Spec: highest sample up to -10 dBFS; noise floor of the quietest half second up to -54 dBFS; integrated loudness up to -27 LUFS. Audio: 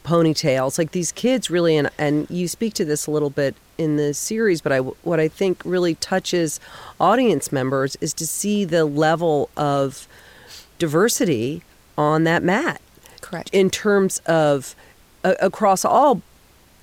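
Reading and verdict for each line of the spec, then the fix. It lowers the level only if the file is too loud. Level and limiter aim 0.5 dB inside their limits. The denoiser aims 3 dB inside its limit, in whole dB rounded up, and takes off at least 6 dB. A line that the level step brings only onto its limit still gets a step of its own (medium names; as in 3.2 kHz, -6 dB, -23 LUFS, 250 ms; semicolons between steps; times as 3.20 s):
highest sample -5.0 dBFS: fail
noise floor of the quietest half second -52 dBFS: fail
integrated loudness -20.0 LUFS: fail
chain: trim -7.5 dB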